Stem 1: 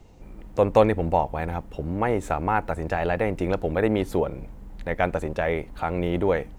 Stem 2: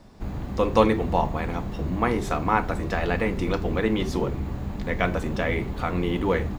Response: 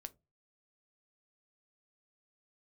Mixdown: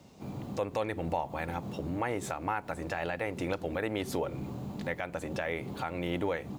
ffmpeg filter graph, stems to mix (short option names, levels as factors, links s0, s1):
-filter_complex "[0:a]highpass=81,tiltshelf=f=1200:g=-5,volume=0.668,asplit=2[s0][s1];[1:a]highpass=f=110:w=0.5412,highpass=f=110:w=1.3066,equalizer=f=1800:t=o:w=0.72:g=-14.5,volume=0.631[s2];[s1]apad=whole_len=290329[s3];[s2][s3]sidechaincompress=threshold=0.0112:ratio=8:attack=21:release=115[s4];[s0][s4]amix=inputs=2:normalize=0,alimiter=limit=0.106:level=0:latency=1:release=294"